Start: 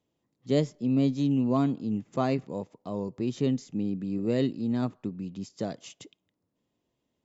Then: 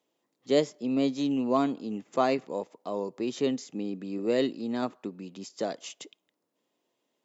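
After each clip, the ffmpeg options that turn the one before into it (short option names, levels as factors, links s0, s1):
-af "highpass=370,volume=1.68"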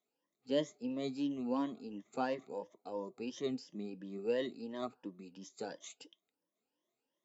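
-af "afftfilt=real='re*pow(10,15/40*sin(2*PI*(1.2*log(max(b,1)*sr/1024/100)/log(2)-(2.9)*(pts-256)/sr)))':imag='im*pow(10,15/40*sin(2*PI*(1.2*log(max(b,1)*sr/1024/100)/log(2)-(2.9)*(pts-256)/sr)))':win_size=1024:overlap=0.75,flanger=delay=3.7:depth=1.8:regen=-78:speed=0.62:shape=triangular,volume=0.422"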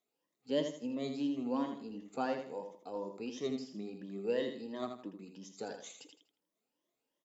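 -af "aecho=1:1:81|162|243|324:0.447|0.138|0.0429|0.0133"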